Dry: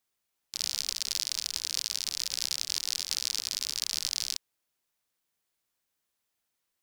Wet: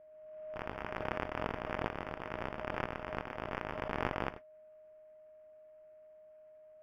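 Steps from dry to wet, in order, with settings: slow attack 265 ms; modulation noise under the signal 12 dB; sample-and-hold 11×; whistle 620 Hz -58 dBFS; distance through air 410 m; swell ahead of each attack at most 32 dB/s; trim +4.5 dB

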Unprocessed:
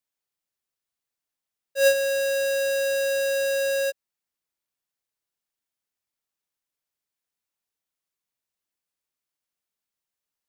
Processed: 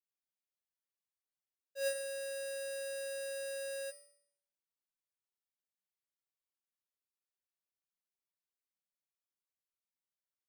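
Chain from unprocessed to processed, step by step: feedback comb 190 Hz, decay 0.67 s, harmonics all, mix 90%

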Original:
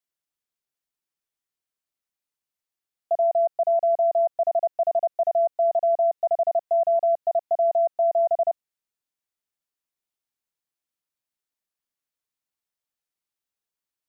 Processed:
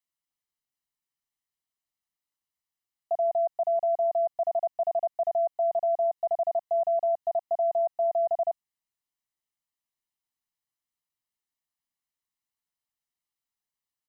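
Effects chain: comb 1 ms, depth 48%; trim -3.5 dB

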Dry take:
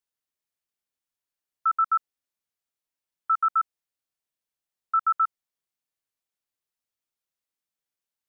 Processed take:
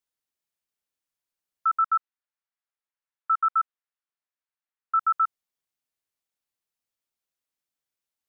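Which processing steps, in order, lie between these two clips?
1.86–4.97 s: band-pass filter 1.4 kHz, Q 1.1

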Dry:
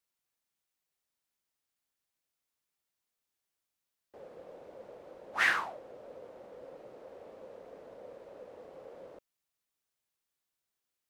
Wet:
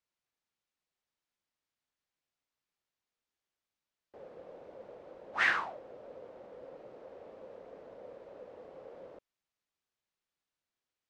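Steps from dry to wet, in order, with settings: distance through air 87 m

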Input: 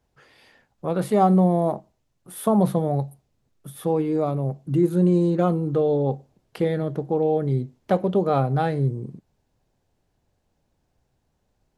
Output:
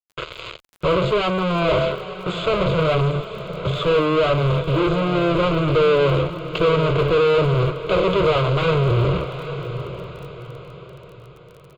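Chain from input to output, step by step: high-pass 47 Hz 24 dB/octave; treble shelf 5 kHz -3 dB; de-hum 72.83 Hz, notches 9; reverse; compression 6:1, threshold -28 dBFS, peak gain reduction 14.5 dB; reverse; fuzz box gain 56 dB, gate -51 dBFS; static phaser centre 1.2 kHz, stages 8; resampled via 16 kHz; distance through air 79 m; on a send: echo that smears into a reverb 857 ms, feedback 41%, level -11 dB; on the sum: crackle 35 per s -36 dBFS

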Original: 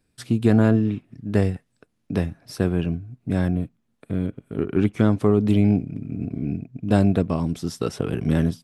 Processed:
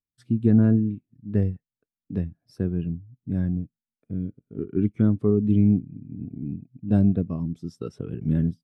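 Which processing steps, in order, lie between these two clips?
dynamic bell 700 Hz, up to -4 dB, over -33 dBFS, Q 1; spectral contrast expander 1.5:1; trim -1.5 dB

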